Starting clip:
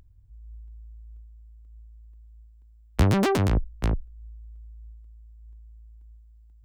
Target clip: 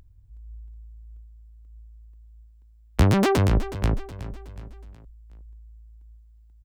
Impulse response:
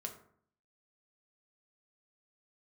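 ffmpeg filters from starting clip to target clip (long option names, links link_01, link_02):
-af "aecho=1:1:369|738|1107|1476:0.2|0.0918|0.0422|0.0194,volume=2dB"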